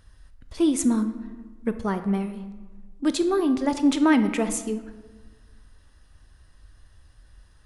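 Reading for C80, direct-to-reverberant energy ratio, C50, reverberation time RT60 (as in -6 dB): 13.0 dB, 9.0 dB, 11.0 dB, 1.4 s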